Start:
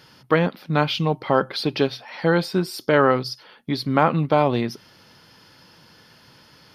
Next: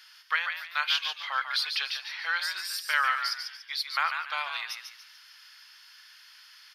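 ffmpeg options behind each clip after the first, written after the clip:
ffmpeg -i in.wav -filter_complex "[0:a]highpass=frequency=1400:width=0.5412,highpass=frequency=1400:width=1.3066,asplit=5[link_01][link_02][link_03][link_04][link_05];[link_02]adelay=144,afreqshift=83,volume=-6.5dB[link_06];[link_03]adelay=288,afreqshift=166,volume=-16.1dB[link_07];[link_04]adelay=432,afreqshift=249,volume=-25.8dB[link_08];[link_05]adelay=576,afreqshift=332,volume=-35.4dB[link_09];[link_01][link_06][link_07][link_08][link_09]amix=inputs=5:normalize=0" out.wav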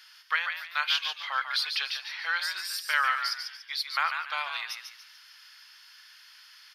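ffmpeg -i in.wav -af anull out.wav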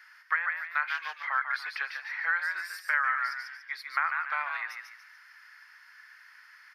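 ffmpeg -i in.wav -filter_complex "[0:a]highshelf=frequency=2500:width_type=q:width=3:gain=-9,acrossover=split=730|2100[link_01][link_02][link_03];[link_01]acompressor=threshold=-49dB:ratio=4[link_04];[link_02]acompressor=threshold=-25dB:ratio=4[link_05];[link_03]acompressor=threshold=-41dB:ratio=4[link_06];[link_04][link_05][link_06]amix=inputs=3:normalize=0" out.wav

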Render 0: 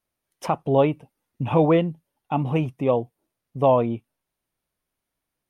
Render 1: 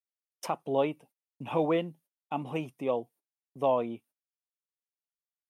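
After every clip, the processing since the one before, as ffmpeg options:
ffmpeg -i in.wav -af "agate=range=-28dB:threshold=-46dB:ratio=16:detection=peak,highpass=220,highshelf=frequency=4400:gain=10.5,volume=-8.5dB" out.wav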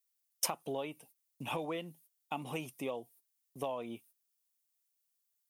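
ffmpeg -i in.wav -af "acompressor=threshold=-32dB:ratio=12,crystalizer=i=5:c=0,volume=-3dB" out.wav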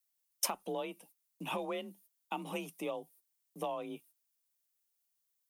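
ffmpeg -i in.wav -af "afreqshift=36" out.wav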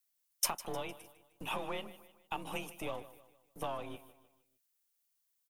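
ffmpeg -i in.wav -filter_complex "[0:a]aecho=1:1:153|306|459|612:0.158|0.0682|0.0293|0.0126,acrossover=split=800[link_01][link_02];[link_01]aeval=exprs='max(val(0),0)':channel_layout=same[link_03];[link_03][link_02]amix=inputs=2:normalize=0,volume=1.5dB" out.wav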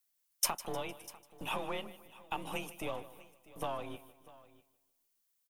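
ffmpeg -i in.wav -af "aecho=1:1:646:0.1,volume=1dB" out.wav

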